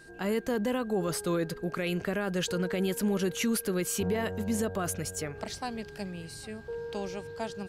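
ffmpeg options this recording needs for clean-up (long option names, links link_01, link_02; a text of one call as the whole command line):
ffmpeg -i in.wav -af "bandreject=frequency=1600:width=30" out.wav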